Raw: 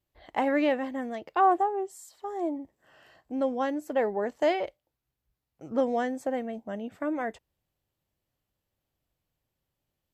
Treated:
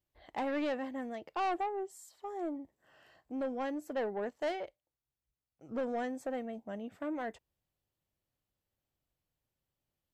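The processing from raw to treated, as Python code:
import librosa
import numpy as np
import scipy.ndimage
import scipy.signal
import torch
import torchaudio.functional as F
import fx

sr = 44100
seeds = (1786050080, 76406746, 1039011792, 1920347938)

y = 10.0 ** (-23.5 / 20.0) * np.tanh(x / 10.0 ** (-23.5 / 20.0))
y = fx.upward_expand(y, sr, threshold_db=-36.0, expansion=1.5, at=(4.29, 5.69))
y = F.gain(torch.from_numpy(y), -5.5).numpy()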